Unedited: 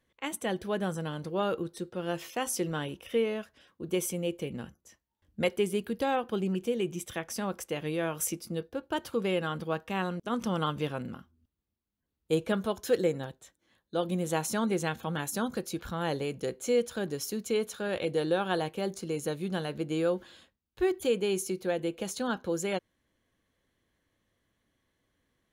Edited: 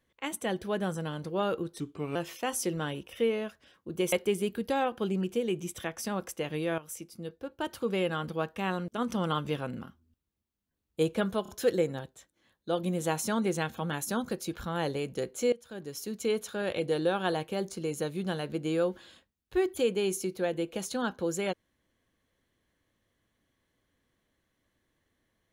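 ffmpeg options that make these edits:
-filter_complex "[0:a]asplit=8[a][b][c][d][e][f][g][h];[a]atrim=end=1.804[i];[b]atrim=start=1.8:end=2.09,asetpts=PTS-STARTPTS,asetrate=36162,aresample=44100,atrim=end_sample=15596,asetpts=PTS-STARTPTS[j];[c]atrim=start=2.086:end=4.062[k];[d]atrim=start=5.438:end=8.1,asetpts=PTS-STARTPTS,afade=t=out:st=2.658:d=0.004:c=hsin:silence=0.223872[l];[e]atrim=start=8.1:end=12.772,asetpts=PTS-STARTPTS,afade=t=in:d=1.19:silence=0.223872[m];[f]atrim=start=12.738:end=12.772[n];[g]atrim=start=12.738:end=16.78,asetpts=PTS-STARTPTS,afade=t=out:st=4.038:d=0.004:c=hsin:silence=0.0944061[o];[h]atrim=start=16.78,asetpts=PTS-STARTPTS,afade=t=in:d=0.78:silence=0.0944061[p];[i][j]acrossfade=d=0.004:c1=hsin:c2=hsin[q];[q][k]acrossfade=d=0.004:c1=hsin:c2=hsin[r];[l][m]concat=n=2:v=0:a=1[s];[r][s]acrossfade=d=0.004:c1=hsin:c2=hsin[t];[t][n]acrossfade=d=0.004:c1=hsin:c2=hsin[u];[o][p]concat=n=2:v=0:a=1[v];[u][v]acrossfade=d=0.004:c1=hsin:c2=hsin"

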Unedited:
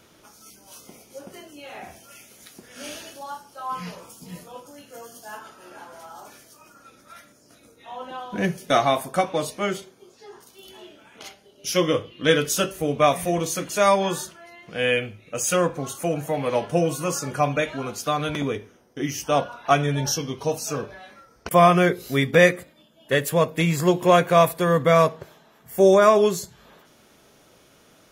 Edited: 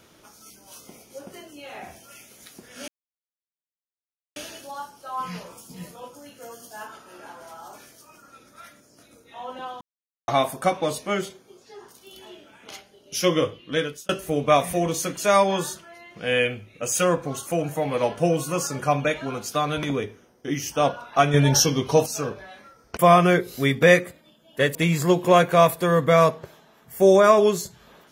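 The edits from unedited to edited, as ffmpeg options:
-filter_complex "[0:a]asplit=8[a][b][c][d][e][f][g][h];[a]atrim=end=2.88,asetpts=PTS-STARTPTS,afade=t=out:st=2.876:d=0.004:c=hsin,apad=pad_dur=1.48[i];[b]atrim=start=2.88:end=8.33,asetpts=PTS-STARTPTS,afade=t=in:d=0.004:c=hsin,afade=t=out:st=5.446:d=0.004:c=hsin[j];[c]atrim=start=8.33:end=8.8,asetpts=PTS-STARTPTS,volume=0[k];[d]atrim=start=8.8:end=12.61,asetpts=PTS-STARTPTS,afade=t=in:d=0.004:c=hsin,afade=t=out:st=3.2:d=0.61[l];[e]atrim=start=12.61:end=19.862,asetpts=PTS-STARTPTS,afade=t=in:d=0.004:c=hsin[m];[f]atrim=start=19.858:end=20.582,asetpts=PTS-STARTPTS,volume=6.5dB[n];[g]atrim=start=20.578:end=23.272[o];[h]atrim=start=23.528[p];[i][j][k][l][m]concat=n=5:v=0:a=1[q];[q][n]acrossfade=d=0.004:c1=hsin:c2=hsin[r];[r][o]acrossfade=d=0.004:c1=hsin:c2=hsin[s];[s][p]acrossfade=d=0.004:c1=hsin:c2=hsin"

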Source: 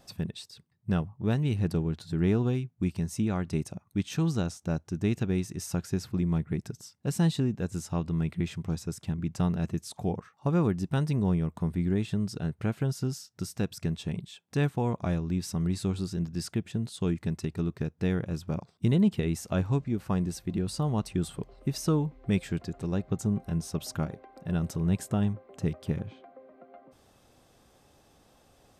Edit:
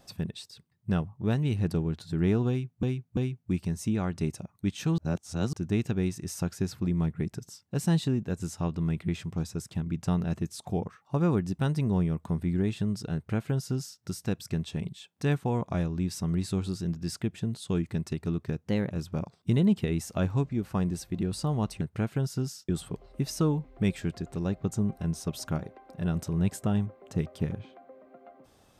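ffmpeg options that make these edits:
-filter_complex "[0:a]asplit=9[a][b][c][d][e][f][g][h][i];[a]atrim=end=2.832[j];[b]atrim=start=2.488:end=2.832[k];[c]atrim=start=2.488:end=4.302[l];[d]atrim=start=4.298:end=4.852,asetpts=PTS-STARTPTS,areverse[m];[e]atrim=start=4.848:end=17.974[n];[f]atrim=start=17.97:end=18.26,asetpts=PTS-STARTPTS,asetrate=49833,aresample=44100[o];[g]atrim=start=18.256:end=21.162[p];[h]atrim=start=12.458:end=13.342[q];[i]atrim=start=21.158[r];[j][k]acrossfade=d=0.004:c1=hsin:c2=hsin[s];[s][l]acrossfade=d=0.004:c1=hsin:c2=hsin[t];[t][m]acrossfade=d=0.004:c1=hsin:c2=hsin[u];[u][n]acrossfade=d=0.004:c1=hsin:c2=hsin[v];[v][o]acrossfade=d=0.004:c1=hsin:c2=hsin[w];[w][p]acrossfade=d=0.004:c1=hsin:c2=hsin[x];[x][q]acrossfade=d=0.004:c1=hsin:c2=hsin[y];[y][r]acrossfade=d=0.004:c1=hsin:c2=hsin"

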